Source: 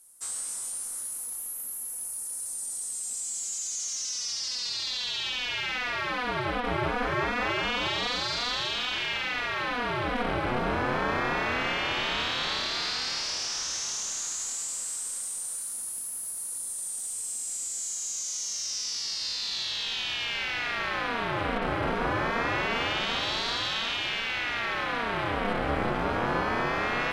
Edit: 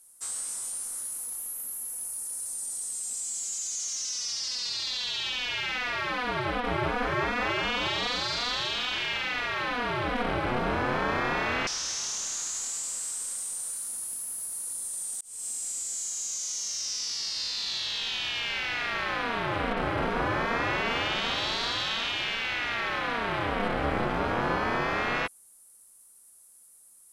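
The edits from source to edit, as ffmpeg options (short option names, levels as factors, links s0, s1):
-filter_complex "[0:a]asplit=3[s0][s1][s2];[s0]atrim=end=11.672[s3];[s1]atrim=start=13.518:end=17.06,asetpts=PTS-STARTPTS,afade=t=out:st=3.538:d=0.004:c=hsin[s4];[s2]atrim=start=17.06,asetpts=PTS-STARTPTS,afade=t=in:d=0.27[s5];[s4][s5]concat=n=2:v=0:a=1[s6];[s3][s6]acrossfade=d=0.004:c1=hsin:c2=hsin"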